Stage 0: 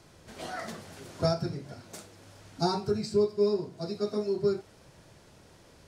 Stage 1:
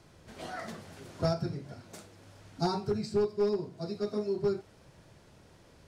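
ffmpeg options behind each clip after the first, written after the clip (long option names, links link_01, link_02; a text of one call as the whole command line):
ffmpeg -i in.wav -af "bass=frequency=250:gain=2,treble=frequency=4000:gain=-3,aeval=exprs='clip(val(0),-1,0.0944)':channel_layout=same,volume=-2.5dB" out.wav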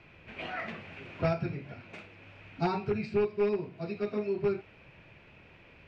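ffmpeg -i in.wav -af "lowpass=frequency=2500:width_type=q:width=6.7" out.wav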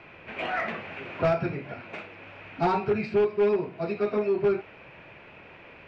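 ffmpeg -i in.wav -filter_complex "[0:a]asplit=2[link_01][link_02];[link_02]highpass=frequency=720:poles=1,volume=16dB,asoftclip=type=tanh:threshold=-16.5dB[link_03];[link_01][link_03]amix=inputs=2:normalize=0,lowpass=frequency=1200:poles=1,volume=-6dB,volume=3.5dB" out.wav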